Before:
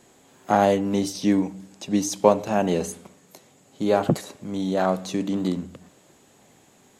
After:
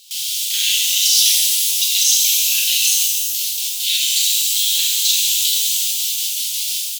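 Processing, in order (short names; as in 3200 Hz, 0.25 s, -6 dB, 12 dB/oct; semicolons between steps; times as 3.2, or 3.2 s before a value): local time reversal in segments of 33 ms; comb 5.6 ms, depth 33%; added noise white -41 dBFS; steep high-pass 3000 Hz 48 dB/oct; tilt -4.5 dB/oct; gate with hold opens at -44 dBFS; maximiser +35.5 dB; shimmer reverb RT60 1.9 s, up +12 st, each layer -2 dB, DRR -2.5 dB; gain -6 dB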